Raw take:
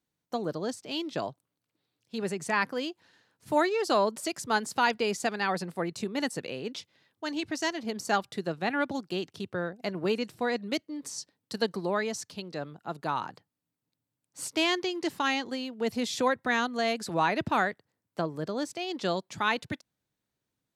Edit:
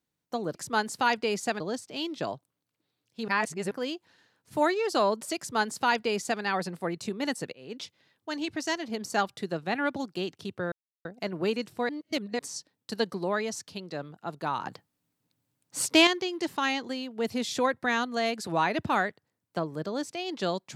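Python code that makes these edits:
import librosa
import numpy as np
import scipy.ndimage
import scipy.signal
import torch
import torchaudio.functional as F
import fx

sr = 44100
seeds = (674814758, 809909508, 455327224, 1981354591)

y = fx.edit(x, sr, fx.reverse_span(start_s=2.23, length_s=0.43),
    fx.duplicate(start_s=4.32, length_s=1.05, to_s=0.55),
    fx.fade_in_span(start_s=6.48, length_s=0.29),
    fx.insert_silence(at_s=9.67, length_s=0.33),
    fx.reverse_span(start_s=10.51, length_s=0.5),
    fx.clip_gain(start_s=13.27, length_s=1.42, db=7.5), tone=tone)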